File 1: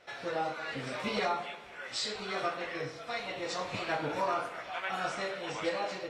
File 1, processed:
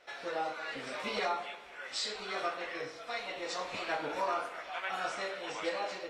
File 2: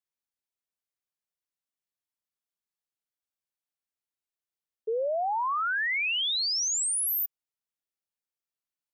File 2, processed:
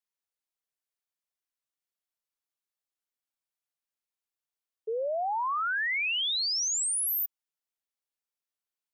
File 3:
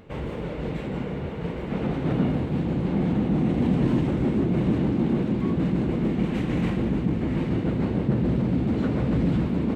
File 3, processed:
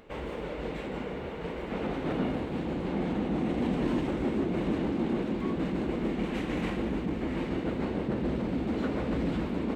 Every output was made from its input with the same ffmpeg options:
-af "equalizer=f=120:t=o:w=1.6:g=-13.5,volume=0.891"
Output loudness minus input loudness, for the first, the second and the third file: -1.5 LU, -1.0 LU, -6.5 LU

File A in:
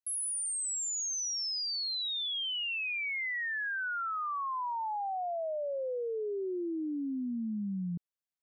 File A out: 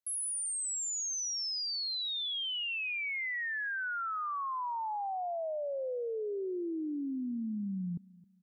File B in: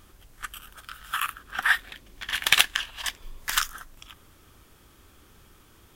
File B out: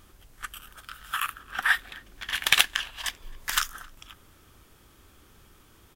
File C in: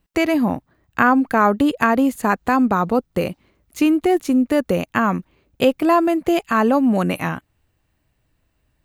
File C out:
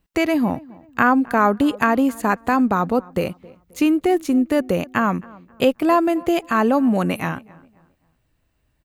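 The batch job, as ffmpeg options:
-filter_complex "[0:a]asplit=2[s0][s1];[s1]adelay=266,lowpass=f=1800:p=1,volume=0.0794,asplit=2[s2][s3];[s3]adelay=266,lowpass=f=1800:p=1,volume=0.36,asplit=2[s4][s5];[s5]adelay=266,lowpass=f=1800:p=1,volume=0.36[s6];[s0][s2][s4][s6]amix=inputs=4:normalize=0,volume=0.891"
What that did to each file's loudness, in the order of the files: -1.0 LU, -1.0 LU, -1.0 LU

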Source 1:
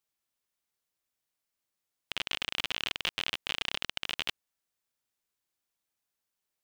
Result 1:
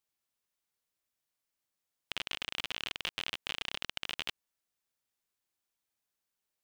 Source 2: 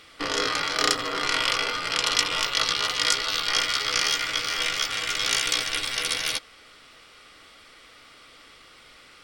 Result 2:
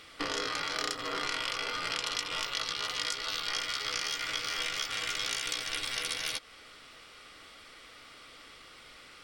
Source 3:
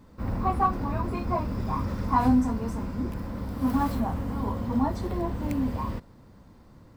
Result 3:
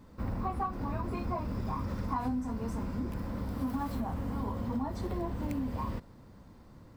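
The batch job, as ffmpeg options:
-af "acompressor=threshold=0.0355:ratio=5,volume=0.841"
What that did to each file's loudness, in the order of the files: -4.0 LU, -9.0 LU, -7.5 LU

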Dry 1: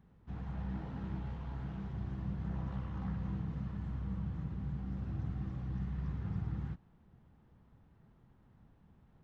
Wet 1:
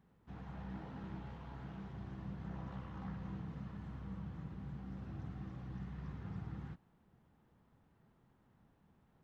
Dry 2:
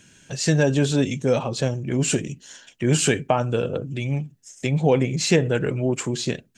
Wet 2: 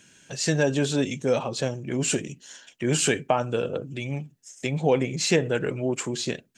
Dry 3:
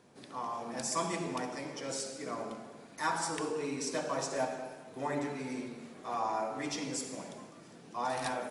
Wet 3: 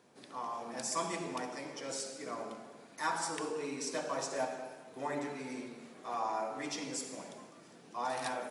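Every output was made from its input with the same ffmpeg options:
-af "lowshelf=f=140:g=-10.5,volume=0.841"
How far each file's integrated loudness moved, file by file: -7.0 LU, -3.5 LU, -2.0 LU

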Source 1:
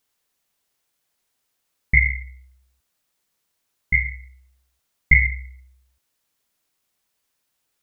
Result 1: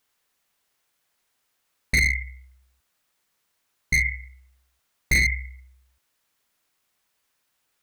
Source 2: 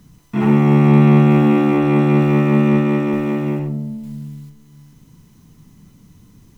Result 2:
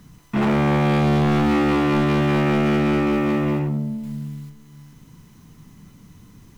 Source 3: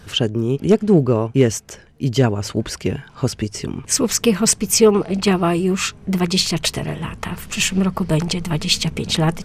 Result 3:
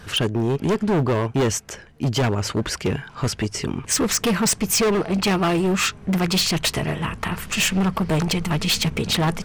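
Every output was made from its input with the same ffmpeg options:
-af "equalizer=f=1500:w=0.59:g=4.5,volume=6.68,asoftclip=hard,volume=0.15"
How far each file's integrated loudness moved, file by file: -3.5 LU, -5.0 LU, -3.0 LU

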